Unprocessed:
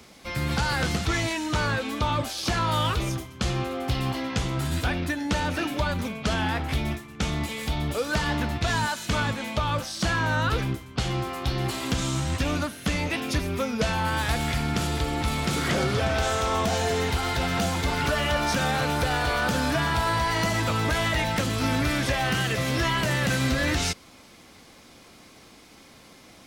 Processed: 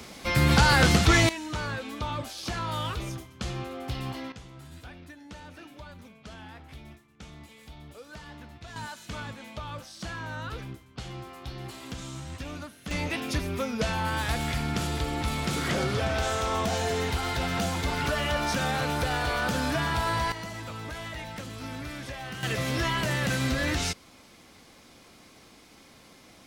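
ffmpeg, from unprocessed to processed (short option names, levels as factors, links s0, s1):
-af "asetnsamples=n=441:p=0,asendcmd='1.29 volume volume -7dB;4.32 volume volume -19dB;8.76 volume volume -12dB;12.91 volume volume -3dB;20.32 volume volume -13dB;22.43 volume volume -3dB',volume=2"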